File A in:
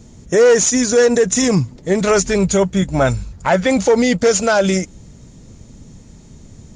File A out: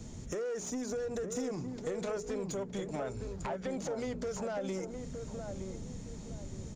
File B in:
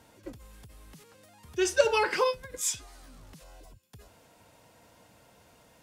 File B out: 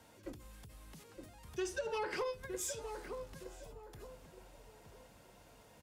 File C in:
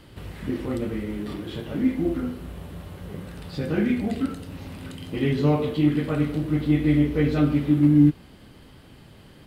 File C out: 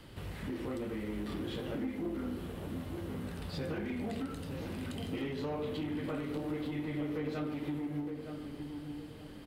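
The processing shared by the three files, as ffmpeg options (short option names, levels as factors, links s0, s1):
-filter_complex "[0:a]bandreject=f=60:t=h:w=6,bandreject=f=120:t=h:w=6,bandreject=f=180:t=h:w=6,bandreject=f=240:t=h:w=6,bandreject=f=300:t=h:w=6,bandreject=f=360:t=h:w=6,bandreject=f=420:t=h:w=6,acrossover=split=290|970[s0][s1][s2];[s0]acompressor=threshold=0.02:ratio=4[s3];[s1]acompressor=threshold=0.126:ratio=4[s4];[s2]acompressor=threshold=0.0178:ratio=4[s5];[s3][s4][s5]amix=inputs=3:normalize=0,alimiter=limit=0.158:level=0:latency=1:release=245,acompressor=threshold=0.0355:ratio=6,asoftclip=type=tanh:threshold=0.0422,asplit=2[s6][s7];[s7]adelay=916,lowpass=f=970:p=1,volume=0.531,asplit=2[s8][s9];[s9]adelay=916,lowpass=f=970:p=1,volume=0.38,asplit=2[s10][s11];[s11]adelay=916,lowpass=f=970:p=1,volume=0.38,asplit=2[s12][s13];[s13]adelay=916,lowpass=f=970:p=1,volume=0.38,asplit=2[s14][s15];[s15]adelay=916,lowpass=f=970:p=1,volume=0.38[s16];[s6][s8][s10][s12][s14][s16]amix=inputs=6:normalize=0,volume=0.708"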